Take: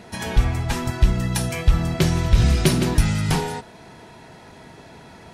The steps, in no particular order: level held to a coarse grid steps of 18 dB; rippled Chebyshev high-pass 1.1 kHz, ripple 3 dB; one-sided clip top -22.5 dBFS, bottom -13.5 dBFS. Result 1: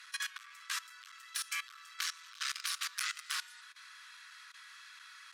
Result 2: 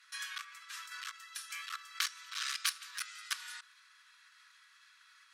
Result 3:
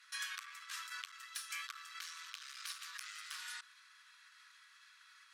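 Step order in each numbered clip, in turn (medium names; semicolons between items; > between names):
one-sided clip > rippled Chebyshev high-pass > level held to a coarse grid; level held to a coarse grid > one-sided clip > rippled Chebyshev high-pass; one-sided clip > level held to a coarse grid > rippled Chebyshev high-pass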